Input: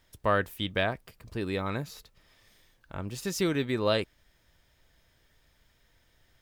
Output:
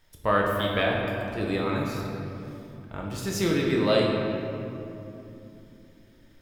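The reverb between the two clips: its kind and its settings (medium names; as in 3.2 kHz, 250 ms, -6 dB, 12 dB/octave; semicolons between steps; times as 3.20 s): simulated room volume 120 m³, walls hard, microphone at 0.54 m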